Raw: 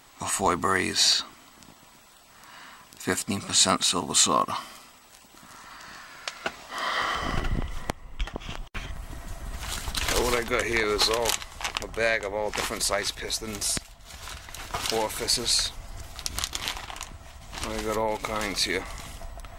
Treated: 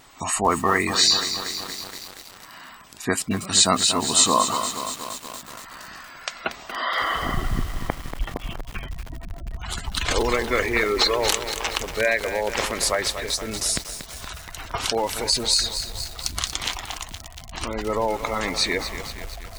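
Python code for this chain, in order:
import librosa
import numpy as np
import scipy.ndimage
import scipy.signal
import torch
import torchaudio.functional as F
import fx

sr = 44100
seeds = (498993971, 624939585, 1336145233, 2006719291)

y = fx.spec_gate(x, sr, threshold_db=-20, keep='strong')
y = fx.vibrato(y, sr, rate_hz=2.9, depth_cents=30.0)
y = fx.echo_crushed(y, sr, ms=235, feedback_pct=80, bits=6, wet_db=-9.0)
y = y * 10.0 ** (3.5 / 20.0)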